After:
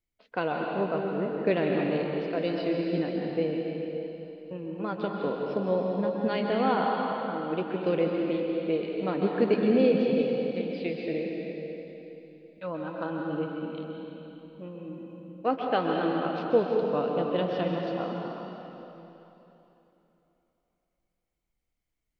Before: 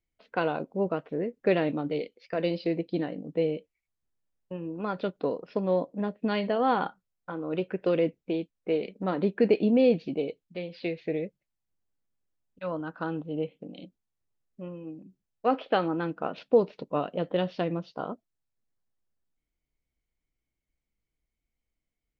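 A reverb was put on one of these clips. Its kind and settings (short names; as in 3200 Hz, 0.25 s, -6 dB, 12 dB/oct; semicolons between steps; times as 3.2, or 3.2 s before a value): plate-style reverb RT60 3.3 s, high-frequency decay 0.95×, pre-delay 0.115 s, DRR -0.5 dB; gain -2 dB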